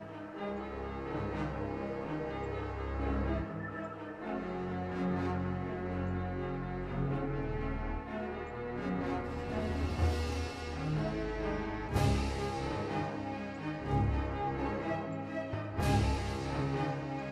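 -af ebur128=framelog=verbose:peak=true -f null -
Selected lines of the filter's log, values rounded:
Integrated loudness:
  I:         -36.2 LUFS
  Threshold: -46.2 LUFS
Loudness range:
  LRA:         2.9 LU
  Threshold: -56.2 LUFS
  LRA low:   -37.6 LUFS
  LRA high:  -34.7 LUFS
True peak:
  Peak:      -17.8 dBFS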